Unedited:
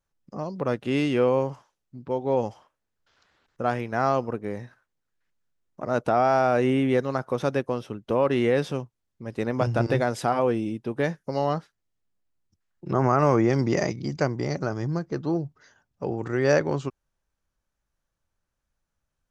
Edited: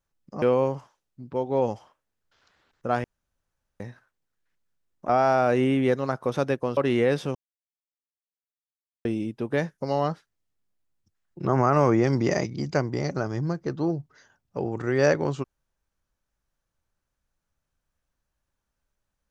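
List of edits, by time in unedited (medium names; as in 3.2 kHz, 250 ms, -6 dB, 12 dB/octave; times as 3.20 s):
0.42–1.17 s: delete
3.79–4.55 s: room tone
5.84–6.15 s: delete
7.83–8.23 s: delete
8.81–10.51 s: mute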